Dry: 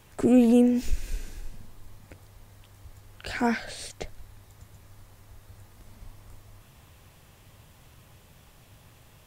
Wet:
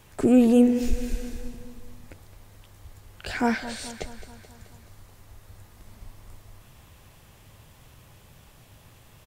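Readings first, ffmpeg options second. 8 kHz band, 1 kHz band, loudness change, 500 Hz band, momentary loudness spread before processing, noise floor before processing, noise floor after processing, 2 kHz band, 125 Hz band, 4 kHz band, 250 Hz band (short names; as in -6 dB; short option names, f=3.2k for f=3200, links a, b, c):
+2.0 dB, +1.5 dB, +1.5 dB, +2.0 dB, 23 LU, -56 dBFS, -54 dBFS, +1.5 dB, +1.5 dB, +2.0 dB, +1.5 dB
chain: -af "aecho=1:1:215|430|645|860|1075|1290:0.2|0.12|0.0718|0.0431|0.0259|0.0155,volume=1.5dB"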